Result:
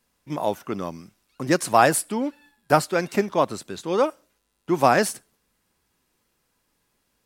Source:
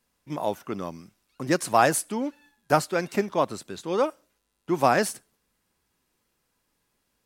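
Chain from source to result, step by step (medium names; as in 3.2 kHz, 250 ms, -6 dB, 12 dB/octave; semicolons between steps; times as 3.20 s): 1.75–2.83 s: band-stop 6.3 kHz, Q 7.3; trim +3 dB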